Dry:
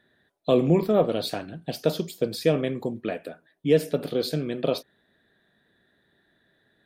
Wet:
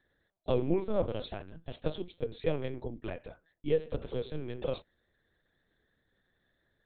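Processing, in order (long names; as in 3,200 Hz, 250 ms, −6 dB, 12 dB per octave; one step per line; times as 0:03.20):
linear-prediction vocoder at 8 kHz pitch kept
level −8.5 dB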